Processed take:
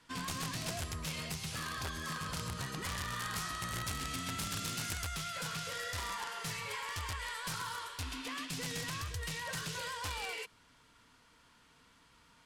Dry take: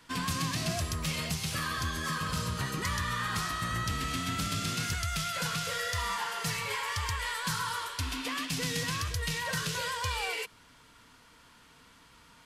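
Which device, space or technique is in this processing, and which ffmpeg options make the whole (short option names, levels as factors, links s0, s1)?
overflowing digital effects unit: -filter_complex "[0:a]aeval=exprs='(mod(16.8*val(0)+1,2)-1)/16.8':c=same,lowpass=12000,asettb=1/sr,asplit=3[s0][s1][s2];[s0]atrim=end=3.154[s3];[s1]atrim=start=3.15:end=5.08,asetpts=PTS-STARTPTS,afade=t=in:d=0.004:c=qsin,afade=t=out:st=1.926:d=0.004:c=qsin,highshelf=f=6100:g=5[s4];[s2]atrim=start=5.076[s5];[s3][s4]acrossfade=d=0.004:c1=hsin:c2=qsin[s6];[s6][s5]acrossfade=d=0.004:c1=qsin:c2=hsin,volume=0.473"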